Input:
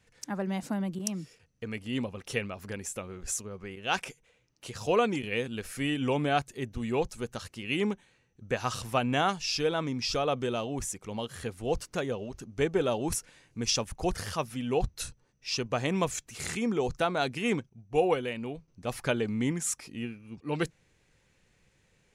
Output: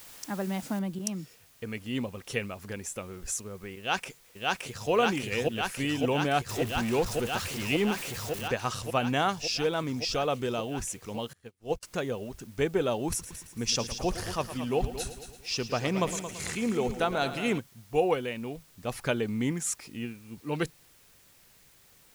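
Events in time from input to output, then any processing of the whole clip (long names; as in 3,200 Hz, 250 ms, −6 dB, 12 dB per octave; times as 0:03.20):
0:00.79: noise floor change −49 dB −60 dB
0:03.78–0:04.91: delay throw 570 ms, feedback 85%, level 0 dB
0:06.49–0:08.48: converter with a step at zero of −33 dBFS
0:11.33–0:11.83: expander for the loud parts 2.5 to 1, over −46 dBFS
0:13.08–0:17.58: echo machine with several playback heads 112 ms, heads first and second, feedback 43%, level −13 dB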